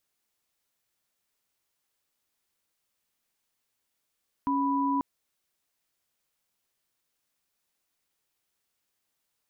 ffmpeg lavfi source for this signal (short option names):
-f lavfi -i "aevalsrc='0.0473*(sin(2*PI*277.18*t)+sin(2*PI*987.77*t))':d=0.54:s=44100"